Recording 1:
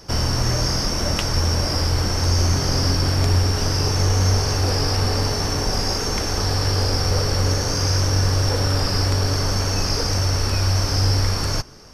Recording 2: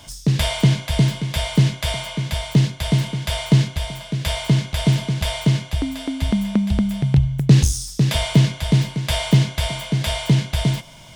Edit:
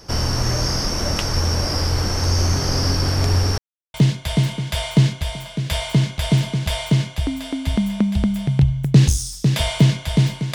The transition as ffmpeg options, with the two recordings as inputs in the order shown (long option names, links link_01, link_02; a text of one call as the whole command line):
ffmpeg -i cue0.wav -i cue1.wav -filter_complex "[0:a]apad=whole_dur=10.54,atrim=end=10.54,asplit=2[link_01][link_02];[link_01]atrim=end=3.58,asetpts=PTS-STARTPTS,afade=type=out:start_time=3.576:duration=0.004:curve=hsin[link_03];[link_02]atrim=start=3.58:end=3.94,asetpts=PTS-STARTPTS,volume=0[link_04];[1:a]atrim=start=2.49:end=9.09,asetpts=PTS-STARTPTS,afade=type=in:duration=0.004:curve=hsin[link_05];[link_03][link_04][link_05]concat=n=3:v=0:a=1" out.wav